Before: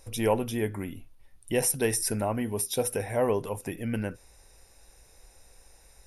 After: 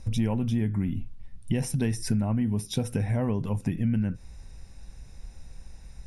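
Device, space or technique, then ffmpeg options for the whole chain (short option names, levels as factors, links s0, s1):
jukebox: -af "lowpass=6700,lowshelf=f=290:t=q:w=1.5:g=12.5,acompressor=threshold=0.0562:ratio=4,volume=1.19"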